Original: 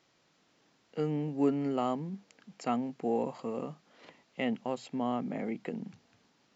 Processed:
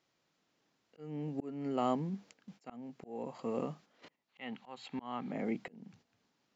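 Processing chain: spectral gain 4.29–5.31, 740–4600 Hz +9 dB; gate -56 dBFS, range -10 dB; auto swell 0.545 s; gain +1 dB

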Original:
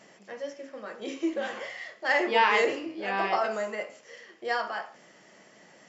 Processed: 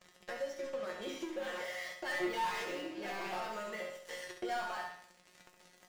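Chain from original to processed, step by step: sample leveller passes 5; compressor 10:1, threshold -29 dBFS, peak gain reduction 16 dB; resonator 180 Hz, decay 0.27 s, harmonics all, mix 90%; flutter echo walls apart 11.7 m, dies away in 0.57 s; gain +1 dB

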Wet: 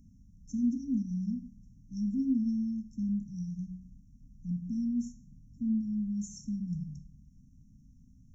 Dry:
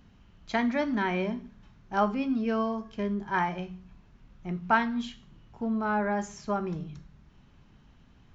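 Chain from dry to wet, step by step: FFT band-reject 290–5400 Hz

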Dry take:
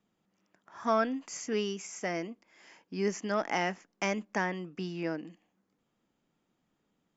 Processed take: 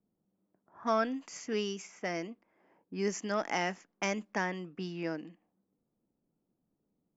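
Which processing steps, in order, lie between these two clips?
high shelf 6600 Hz +8 dB; low-pass opened by the level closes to 560 Hz, open at -29.5 dBFS; gain -2 dB

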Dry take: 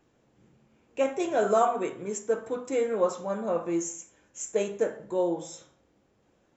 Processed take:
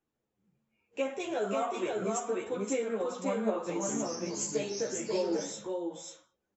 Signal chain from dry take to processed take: spectral noise reduction 19 dB; dynamic EQ 3200 Hz, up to +6 dB, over -51 dBFS, Q 1.1; compressor 5:1, threshold -31 dBFS, peak gain reduction 12.5 dB; echo 0.539 s -3 dB; 3.51–5.52 echoes that change speed 0.181 s, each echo -3 st, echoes 3, each echo -6 dB; ensemble effect; gain +3.5 dB

